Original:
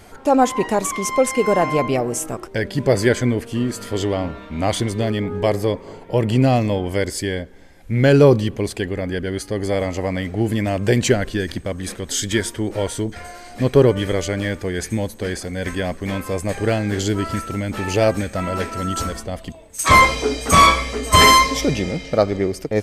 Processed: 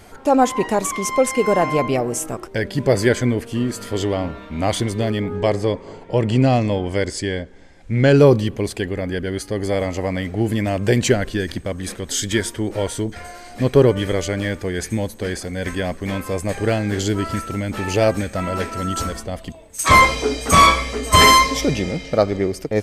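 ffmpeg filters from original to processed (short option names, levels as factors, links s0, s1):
-filter_complex "[0:a]asettb=1/sr,asplit=3[s0][s1][s2];[s0]atrim=end=5.354[s3];[s1]atrim=start=5.35:end=8.18,asetpts=PTS-STARTPTS,afade=t=in:d=0.004:c=qsin,afade=t=out:st=2.826:d=0.004:c=qsin,lowpass=f=8800:w=0.5412,lowpass=f=8800:w=1.3066[s4];[s2]atrim=start=8.176[s5];[s3][s4]acrossfade=d=0.004:c1=hsin:c2=qsin[s6];[s6][s5]acrossfade=d=0.004:c1=qsin:c2=hsin"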